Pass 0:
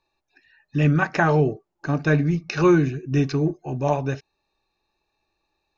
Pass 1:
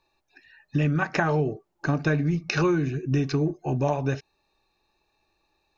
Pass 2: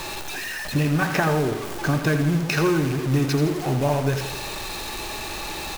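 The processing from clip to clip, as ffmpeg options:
ffmpeg -i in.wav -af "acompressor=threshold=-24dB:ratio=6,volume=3.5dB" out.wav
ffmpeg -i in.wav -af "aeval=exprs='val(0)+0.5*0.0531*sgn(val(0))':channel_layout=same,acrusher=bits=5:mode=log:mix=0:aa=0.000001,aecho=1:1:83|166|249|332|415|498:0.355|0.188|0.0997|0.0528|0.028|0.0148" out.wav

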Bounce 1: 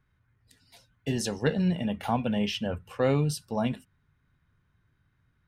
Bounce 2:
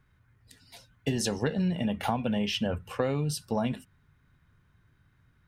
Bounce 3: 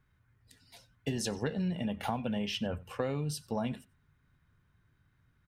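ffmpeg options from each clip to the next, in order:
ffmpeg -i in.wav -af "acompressor=threshold=-29dB:ratio=12,volume=5dB" out.wav
ffmpeg -i in.wav -filter_complex "[0:a]asplit=2[link_01][link_02];[link_02]adelay=93.29,volume=-23dB,highshelf=frequency=4000:gain=-2.1[link_03];[link_01][link_03]amix=inputs=2:normalize=0,volume=-5dB" out.wav

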